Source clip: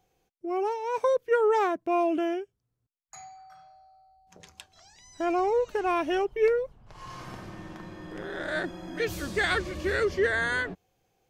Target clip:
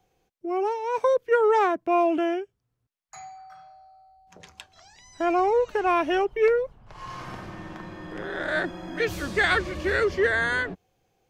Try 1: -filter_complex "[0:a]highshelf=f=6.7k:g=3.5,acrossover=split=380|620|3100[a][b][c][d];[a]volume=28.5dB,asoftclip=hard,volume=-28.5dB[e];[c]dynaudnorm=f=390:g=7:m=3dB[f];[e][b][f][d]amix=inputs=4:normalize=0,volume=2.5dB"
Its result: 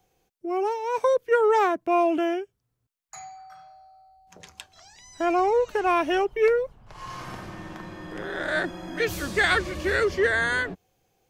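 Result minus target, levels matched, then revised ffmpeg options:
8000 Hz band +4.5 dB
-filter_complex "[0:a]highshelf=f=6.7k:g=-5,acrossover=split=380|620|3100[a][b][c][d];[a]volume=28.5dB,asoftclip=hard,volume=-28.5dB[e];[c]dynaudnorm=f=390:g=7:m=3dB[f];[e][b][f][d]amix=inputs=4:normalize=0,volume=2.5dB"

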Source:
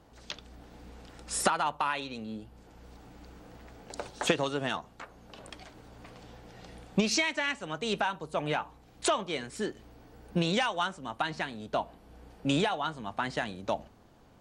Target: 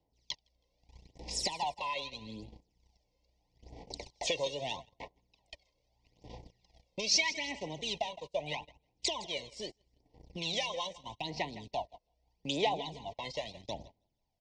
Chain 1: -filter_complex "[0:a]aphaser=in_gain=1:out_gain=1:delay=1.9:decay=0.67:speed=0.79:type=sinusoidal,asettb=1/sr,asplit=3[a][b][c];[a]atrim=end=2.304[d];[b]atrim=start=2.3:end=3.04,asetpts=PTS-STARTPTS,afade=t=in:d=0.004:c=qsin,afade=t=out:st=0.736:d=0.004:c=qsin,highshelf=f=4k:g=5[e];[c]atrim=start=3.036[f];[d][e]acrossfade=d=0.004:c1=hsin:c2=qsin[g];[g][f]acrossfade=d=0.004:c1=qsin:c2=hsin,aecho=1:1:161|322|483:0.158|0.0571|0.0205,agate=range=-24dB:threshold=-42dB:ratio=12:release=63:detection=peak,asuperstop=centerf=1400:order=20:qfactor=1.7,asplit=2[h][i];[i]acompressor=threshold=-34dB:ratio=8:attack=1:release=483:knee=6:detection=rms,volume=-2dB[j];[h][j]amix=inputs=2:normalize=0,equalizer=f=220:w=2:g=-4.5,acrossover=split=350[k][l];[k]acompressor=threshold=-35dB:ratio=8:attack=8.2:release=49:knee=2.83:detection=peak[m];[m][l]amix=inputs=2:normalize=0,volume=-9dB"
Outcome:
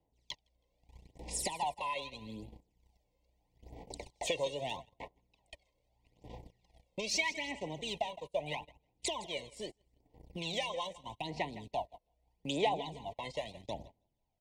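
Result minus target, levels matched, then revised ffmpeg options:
4000 Hz band -2.5 dB
-filter_complex "[0:a]aphaser=in_gain=1:out_gain=1:delay=1.9:decay=0.67:speed=0.79:type=sinusoidal,asettb=1/sr,asplit=3[a][b][c];[a]atrim=end=2.304[d];[b]atrim=start=2.3:end=3.04,asetpts=PTS-STARTPTS,afade=t=in:d=0.004:c=qsin,afade=t=out:st=0.736:d=0.004:c=qsin,highshelf=f=4k:g=5[e];[c]atrim=start=3.036[f];[d][e]acrossfade=d=0.004:c1=hsin:c2=qsin[g];[g][f]acrossfade=d=0.004:c1=qsin:c2=hsin,aecho=1:1:161|322|483:0.158|0.0571|0.0205,agate=range=-24dB:threshold=-42dB:ratio=12:release=63:detection=peak,asuperstop=centerf=1400:order=20:qfactor=1.7,asplit=2[h][i];[i]acompressor=threshold=-34dB:ratio=8:attack=1:release=483:knee=6:detection=rms,volume=-2dB[j];[h][j]amix=inputs=2:normalize=0,lowpass=f=5.4k:t=q:w=3.1,equalizer=f=220:w=2:g=-4.5,acrossover=split=350[k][l];[k]acompressor=threshold=-35dB:ratio=8:attack=8.2:release=49:knee=2.83:detection=peak[m];[m][l]amix=inputs=2:normalize=0,volume=-9dB"

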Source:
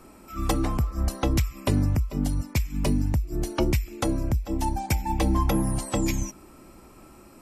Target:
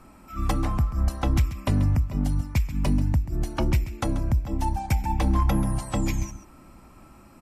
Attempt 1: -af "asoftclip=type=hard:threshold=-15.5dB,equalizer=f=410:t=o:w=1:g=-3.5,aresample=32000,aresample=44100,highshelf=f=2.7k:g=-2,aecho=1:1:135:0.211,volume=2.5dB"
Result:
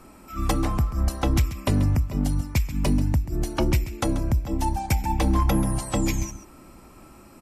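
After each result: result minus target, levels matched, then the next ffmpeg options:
4000 Hz band +3.5 dB; 500 Hz band +3.0 dB
-af "asoftclip=type=hard:threshold=-15.5dB,equalizer=f=410:t=o:w=1:g=-3.5,aresample=32000,aresample=44100,highshelf=f=2.7k:g=-8.5,aecho=1:1:135:0.211,volume=2.5dB"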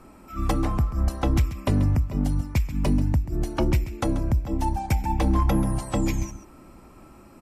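500 Hz band +3.0 dB
-af "asoftclip=type=hard:threshold=-15.5dB,equalizer=f=410:t=o:w=1:g=-9.5,aresample=32000,aresample=44100,highshelf=f=2.7k:g=-8.5,aecho=1:1:135:0.211,volume=2.5dB"

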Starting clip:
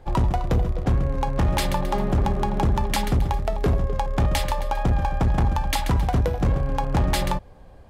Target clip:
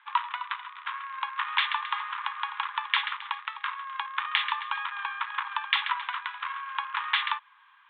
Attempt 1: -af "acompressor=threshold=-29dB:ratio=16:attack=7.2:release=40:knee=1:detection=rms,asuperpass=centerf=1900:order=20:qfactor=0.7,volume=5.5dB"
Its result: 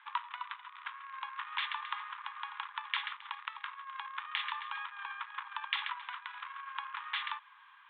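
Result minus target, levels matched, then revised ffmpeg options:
compressor: peak gain reduction +13.5 dB
-af "asuperpass=centerf=1900:order=20:qfactor=0.7,volume=5.5dB"

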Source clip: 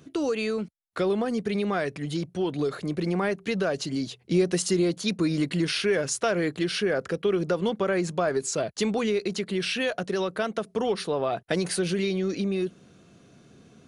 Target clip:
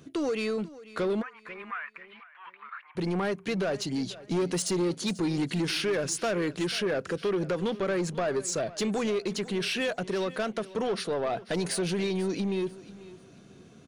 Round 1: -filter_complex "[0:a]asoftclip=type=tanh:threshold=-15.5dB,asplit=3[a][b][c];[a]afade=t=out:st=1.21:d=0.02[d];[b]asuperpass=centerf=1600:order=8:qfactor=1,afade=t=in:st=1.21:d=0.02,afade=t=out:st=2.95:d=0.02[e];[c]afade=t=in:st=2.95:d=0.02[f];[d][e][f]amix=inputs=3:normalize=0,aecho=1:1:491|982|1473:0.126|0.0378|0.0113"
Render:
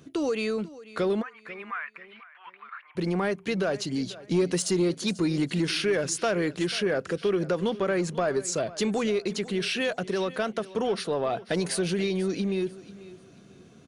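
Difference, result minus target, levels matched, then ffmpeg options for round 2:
soft clip: distortion -10 dB
-filter_complex "[0:a]asoftclip=type=tanh:threshold=-23dB,asplit=3[a][b][c];[a]afade=t=out:st=1.21:d=0.02[d];[b]asuperpass=centerf=1600:order=8:qfactor=1,afade=t=in:st=1.21:d=0.02,afade=t=out:st=2.95:d=0.02[e];[c]afade=t=in:st=2.95:d=0.02[f];[d][e][f]amix=inputs=3:normalize=0,aecho=1:1:491|982|1473:0.126|0.0378|0.0113"

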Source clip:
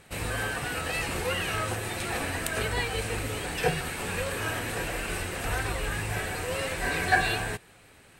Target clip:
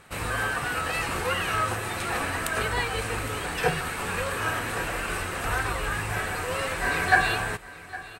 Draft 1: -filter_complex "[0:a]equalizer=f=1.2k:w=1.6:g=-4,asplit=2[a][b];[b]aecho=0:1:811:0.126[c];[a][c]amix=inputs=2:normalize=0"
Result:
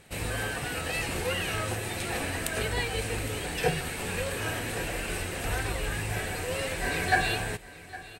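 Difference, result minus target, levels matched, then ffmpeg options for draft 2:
1000 Hz band -3.0 dB
-filter_complex "[0:a]equalizer=f=1.2k:w=1.6:g=8,asplit=2[a][b];[b]aecho=0:1:811:0.126[c];[a][c]amix=inputs=2:normalize=0"

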